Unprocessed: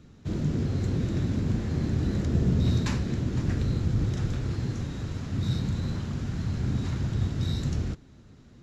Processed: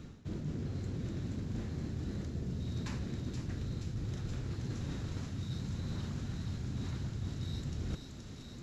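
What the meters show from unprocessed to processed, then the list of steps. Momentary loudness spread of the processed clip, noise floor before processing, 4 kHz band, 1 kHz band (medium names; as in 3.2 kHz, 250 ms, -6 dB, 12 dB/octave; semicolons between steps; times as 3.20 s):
1 LU, -52 dBFS, -8.0 dB, -10.0 dB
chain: reverse; compression 16:1, threshold -39 dBFS, peak gain reduction 21 dB; reverse; feedback echo behind a high-pass 475 ms, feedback 75%, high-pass 3.4 kHz, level -3.5 dB; trim +4.5 dB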